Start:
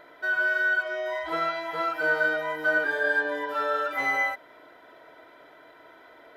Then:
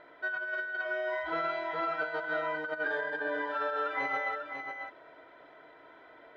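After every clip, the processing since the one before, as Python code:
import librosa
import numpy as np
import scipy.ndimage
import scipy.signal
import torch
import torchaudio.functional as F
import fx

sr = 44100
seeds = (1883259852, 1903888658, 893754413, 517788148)

y = scipy.signal.sosfilt(scipy.signal.butter(2, 3500.0, 'lowpass', fs=sr, output='sos'), x)
y = fx.over_compress(y, sr, threshold_db=-27.0, ratio=-0.5)
y = y + 10.0 ** (-7.0 / 20.0) * np.pad(y, (int(545 * sr / 1000.0), 0))[:len(y)]
y = y * 10.0 ** (-5.5 / 20.0)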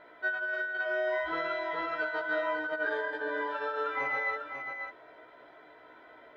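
y = fx.doubler(x, sr, ms=16.0, db=-2.0)
y = y * 10.0 ** (-1.5 / 20.0)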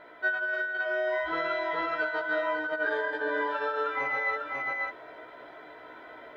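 y = fx.rider(x, sr, range_db=4, speed_s=0.5)
y = y * 10.0 ** (3.0 / 20.0)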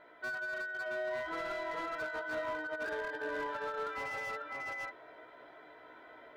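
y = fx.slew_limit(x, sr, full_power_hz=52.0)
y = y * 10.0 ** (-7.5 / 20.0)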